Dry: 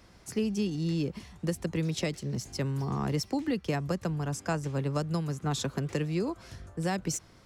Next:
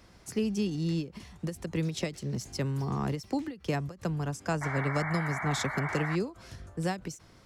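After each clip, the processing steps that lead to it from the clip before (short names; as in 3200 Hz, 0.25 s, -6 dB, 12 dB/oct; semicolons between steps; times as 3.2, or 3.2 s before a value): painted sound noise, 4.61–6.16, 590–2300 Hz -36 dBFS; ending taper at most 190 dB/s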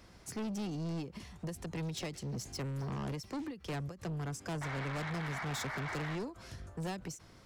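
soft clip -34 dBFS, distortion -8 dB; gain -1 dB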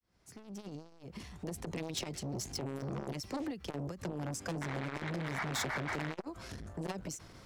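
opening faded in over 1.67 s; core saturation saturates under 320 Hz; gain +5 dB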